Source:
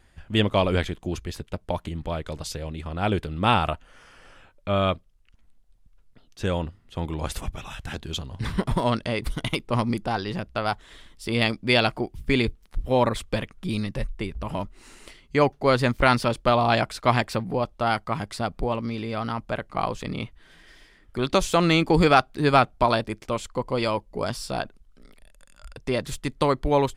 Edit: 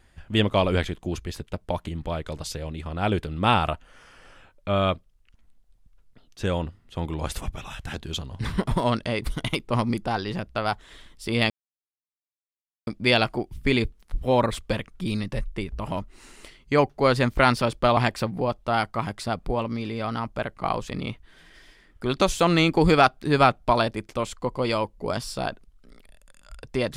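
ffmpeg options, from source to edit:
-filter_complex "[0:a]asplit=3[a][b][c];[a]atrim=end=11.5,asetpts=PTS-STARTPTS,afade=t=out:st=11.496:d=0.004:c=hsin,apad=pad_dur=1.37[d];[b]atrim=start=11.5:end=16.602,asetpts=PTS-STARTPTS,afade=t=in:d=0.004:c=hsin[e];[c]atrim=start=17.098[f];[d][e]concat=n=2:v=0:a=1[g];[g][f]acrossfade=d=0.004:c1=hsin:c2=hsin"

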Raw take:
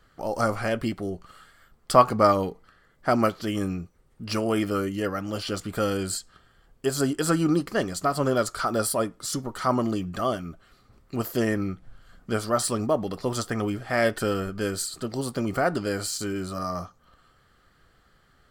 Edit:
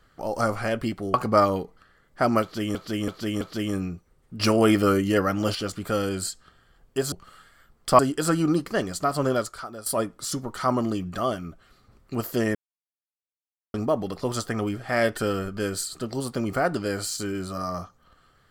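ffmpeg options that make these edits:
-filter_complex "[0:a]asplit=12[a][b][c][d][e][f][g][h][i][j][k][l];[a]atrim=end=1.142[m];[b]atrim=start=2.008:end=3.622[n];[c]atrim=start=3.288:end=3.622[o];[d]atrim=start=3.288:end=3.622[p];[e]atrim=start=3.288:end=4.282[q];[f]atrim=start=4.278:end=5.432,asetpts=PTS-STARTPTS,volume=6dB[r];[g]atrim=start=5.428:end=7.002[s];[h]atrim=start=1.138:end=2.012[t];[i]atrim=start=6.998:end=8.87,asetpts=PTS-STARTPTS,afade=t=out:st=1.342:d=0.53:c=qua:silence=0.16788[u];[j]atrim=start=8.87:end=11.56,asetpts=PTS-STARTPTS,afade=t=in:d=0.004:c=hsin:silence=0.16788,afade=t=out:st=2.686:d=0.004:c=hsin[v];[k]atrim=start=11.56:end=12.75,asetpts=PTS-STARTPTS,volume=0[w];[l]atrim=start=12.75,asetpts=PTS-STARTPTS,afade=t=in:d=0.004:c=hsin[x];[m][n]acrossfade=d=0.004:c1=hsin:c2=hsin[y];[y][o]acrossfade=d=0.004:c1=hsin:c2=hsin[z];[z][p]acrossfade=d=0.004:c1=hsin:c2=hsin[aa];[aa][q]acrossfade=d=0.004:c1=hsin:c2=hsin[ab];[ab][r]acrossfade=d=0.004:c1=hsin:c2=hsin[ac];[ac][s]acrossfade=d=0.004:c1=hsin:c2=hsin[ad];[ad][t]acrossfade=d=0.004:c1=hsin:c2=hsin[ae];[u][v][w][x]concat=n=4:v=0:a=1[af];[ae][af]acrossfade=d=0.004:c1=hsin:c2=hsin"

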